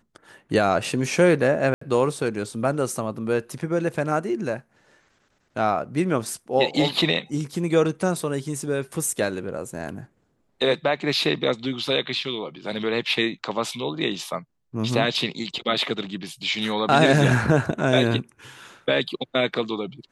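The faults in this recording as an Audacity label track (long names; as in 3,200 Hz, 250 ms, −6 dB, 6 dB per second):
1.740000	1.810000	drop-out 74 ms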